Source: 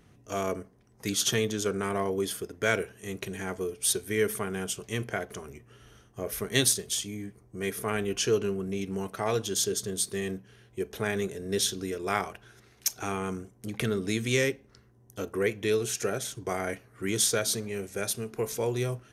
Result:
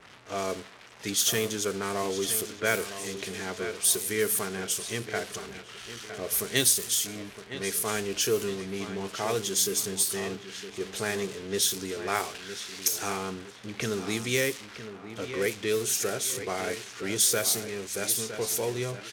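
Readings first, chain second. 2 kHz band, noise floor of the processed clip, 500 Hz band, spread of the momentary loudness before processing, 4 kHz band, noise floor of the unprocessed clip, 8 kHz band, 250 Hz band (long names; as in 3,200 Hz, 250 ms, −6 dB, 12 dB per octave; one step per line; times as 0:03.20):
+1.0 dB, −48 dBFS, −1.0 dB, 12 LU, +2.5 dB, −60 dBFS, +4.0 dB, −2.0 dB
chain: spike at every zero crossing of −23 dBFS
low-shelf EQ 220 Hz −6 dB
on a send: repeating echo 962 ms, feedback 41%, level −11 dB
on the sum: low-pass that shuts in the quiet parts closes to 960 Hz, open at −22 dBFS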